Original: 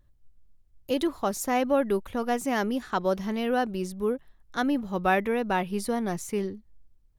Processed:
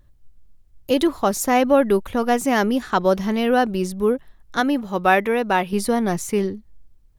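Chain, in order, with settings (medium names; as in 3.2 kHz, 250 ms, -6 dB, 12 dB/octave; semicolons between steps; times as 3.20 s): 4.60–5.73 s: bass shelf 190 Hz -9.5 dB; trim +8 dB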